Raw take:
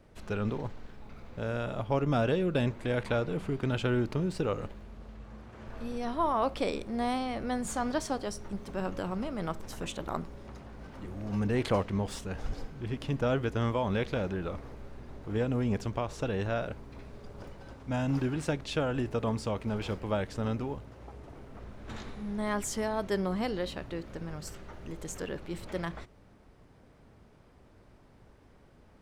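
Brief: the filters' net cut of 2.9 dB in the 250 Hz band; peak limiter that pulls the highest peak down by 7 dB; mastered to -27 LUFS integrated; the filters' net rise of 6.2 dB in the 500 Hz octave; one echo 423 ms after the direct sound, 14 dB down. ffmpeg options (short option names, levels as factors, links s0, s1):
-af "equalizer=f=250:t=o:g=-6.5,equalizer=f=500:t=o:g=9,alimiter=limit=0.119:level=0:latency=1,aecho=1:1:423:0.2,volume=1.58"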